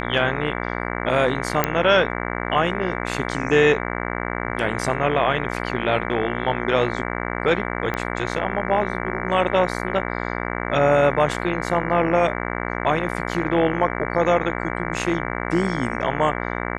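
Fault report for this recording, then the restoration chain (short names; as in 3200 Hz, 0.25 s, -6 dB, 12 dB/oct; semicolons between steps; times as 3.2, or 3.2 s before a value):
buzz 60 Hz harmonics 38 -27 dBFS
1.64 pop -3 dBFS
7.94 pop -12 dBFS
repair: de-click; de-hum 60 Hz, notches 38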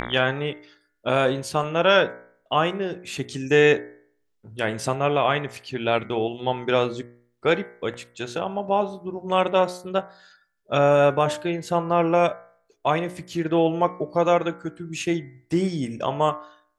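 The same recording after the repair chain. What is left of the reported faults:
7.94 pop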